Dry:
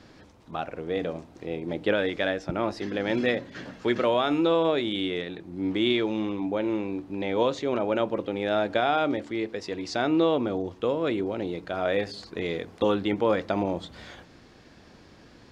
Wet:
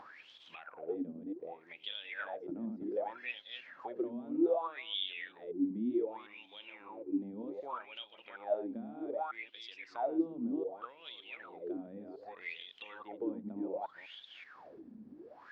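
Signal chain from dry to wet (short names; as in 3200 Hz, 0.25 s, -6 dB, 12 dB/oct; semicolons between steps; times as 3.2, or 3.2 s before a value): reverse delay 0.19 s, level -4.5 dB; dynamic EQ 850 Hz, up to +5 dB, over -39 dBFS, Q 2.7; compressor 2:1, threshold -35 dBFS, peak gain reduction 10.5 dB; wah 0.65 Hz 220–3400 Hz, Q 13; upward compressor, threshold -54 dBFS; gain +8 dB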